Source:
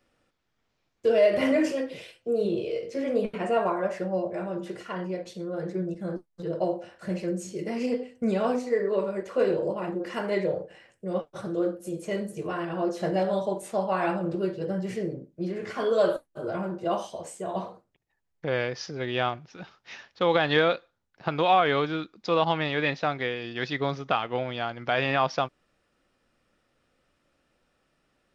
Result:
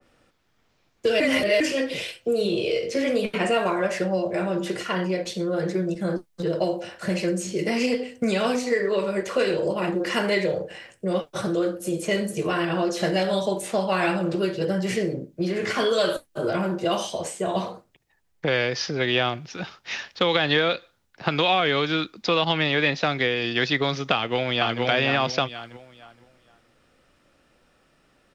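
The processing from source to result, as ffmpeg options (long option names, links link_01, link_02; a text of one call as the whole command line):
ffmpeg -i in.wav -filter_complex "[0:a]asplit=2[link_01][link_02];[link_02]afade=type=in:start_time=24.14:duration=0.01,afade=type=out:start_time=24.82:duration=0.01,aecho=0:1:470|940|1410|1880:0.749894|0.187474|0.0468684|0.0117171[link_03];[link_01][link_03]amix=inputs=2:normalize=0,asplit=3[link_04][link_05][link_06];[link_04]atrim=end=1.202[link_07];[link_05]atrim=start=1.198:end=1.602,asetpts=PTS-STARTPTS,areverse[link_08];[link_06]atrim=start=1.598[link_09];[link_07][link_08]acrossfade=duration=0.004:curve1=hsin:curve2=hsin[link_10];[link_10][link_09]acrossfade=duration=0.004:curve1=hsin:curve2=hsin,acrossover=split=110|580|1500|4200[link_11][link_12][link_13][link_14][link_15];[link_11]acompressor=threshold=-55dB:ratio=4[link_16];[link_12]acompressor=threshold=-33dB:ratio=4[link_17];[link_13]acompressor=threshold=-41dB:ratio=4[link_18];[link_14]acompressor=threshold=-38dB:ratio=4[link_19];[link_15]acompressor=threshold=-51dB:ratio=4[link_20];[link_16][link_17][link_18][link_19][link_20]amix=inputs=5:normalize=0,adynamicequalizer=threshold=0.00355:dfrequency=1800:dqfactor=0.7:tfrequency=1800:tqfactor=0.7:attack=5:release=100:ratio=0.375:range=3:mode=boostabove:tftype=highshelf,volume=9dB" out.wav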